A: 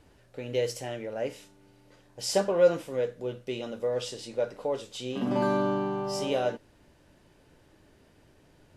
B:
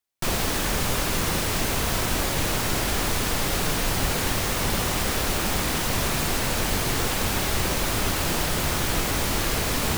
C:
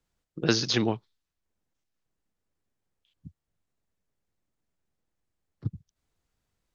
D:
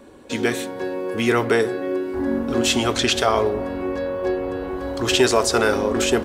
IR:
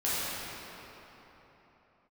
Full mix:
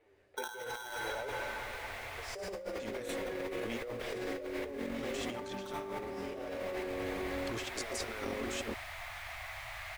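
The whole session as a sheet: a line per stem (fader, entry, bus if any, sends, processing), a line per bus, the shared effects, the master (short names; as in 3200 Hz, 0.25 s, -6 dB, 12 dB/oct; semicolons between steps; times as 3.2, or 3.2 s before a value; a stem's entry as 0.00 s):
-6.0 dB, 0.00 s, bus A, send -15.5 dB, flange 1.5 Hz, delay 8.5 ms, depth 4.3 ms, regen -2%
-16.5 dB, 0.35 s, bus A, send -21 dB, Chebyshev band-stop 120–660 Hz, order 4
-2.0 dB, 0.00 s, no bus, send -11.5 dB, vocal tract filter u; polarity switched at an audio rate 1200 Hz
-16.0 dB, 2.50 s, no bus, no send, negative-ratio compressor -23 dBFS, ratio -0.5
bus A: 0.0 dB, speaker cabinet 390–3500 Hz, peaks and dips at 400 Hz +10 dB, 860 Hz -4 dB, 1400 Hz -7 dB, 2100 Hz +6 dB, 3000 Hz -4 dB; compressor 3:1, threshold -34 dBFS, peak gain reduction 7.5 dB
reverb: on, pre-delay 8 ms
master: bell 1000 Hz -3.5 dB 0.2 oct; negative-ratio compressor -39 dBFS, ratio -1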